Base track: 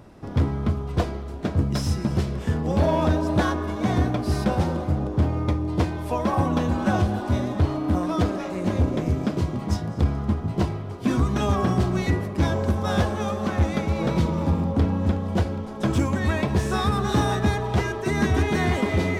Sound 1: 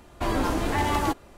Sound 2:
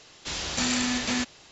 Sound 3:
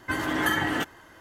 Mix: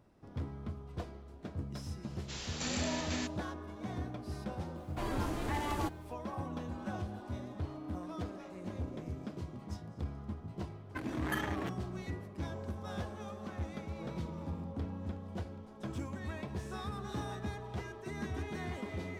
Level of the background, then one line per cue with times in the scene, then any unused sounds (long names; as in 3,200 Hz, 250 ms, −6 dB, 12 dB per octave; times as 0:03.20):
base track −18 dB
0:02.03: mix in 2 −11.5 dB
0:04.76: mix in 1 −11.5 dB + bit-depth reduction 10 bits, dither none
0:10.86: mix in 3 −9.5 dB + adaptive Wiener filter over 41 samples